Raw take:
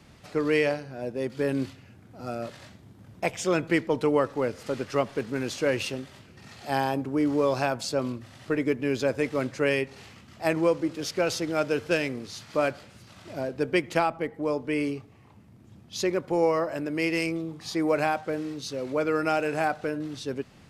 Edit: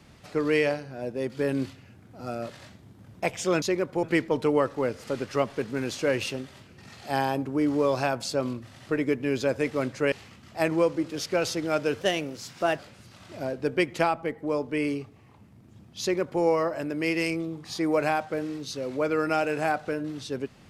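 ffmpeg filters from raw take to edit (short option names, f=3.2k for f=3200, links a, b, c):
-filter_complex "[0:a]asplit=6[a][b][c][d][e][f];[a]atrim=end=3.622[g];[b]atrim=start=15.968:end=16.382[h];[c]atrim=start=3.618:end=9.712[i];[d]atrim=start=9.968:end=11.864[j];[e]atrim=start=11.86:end=12.75,asetpts=PTS-STARTPTS,asetrate=50274,aresample=44100[k];[f]atrim=start=12.746[l];[g][h]acrossfade=d=0.004:c1=hsin:c2=hsin[m];[m][i]acrossfade=d=0.004:c1=hsin:c2=hsin[n];[n][j]acrossfade=d=0.004:c1=hsin:c2=hsin[o];[o][k]acrossfade=d=0.004:c1=hsin:c2=hsin[p];[p][l]acrossfade=d=0.004:c1=hsin:c2=hsin"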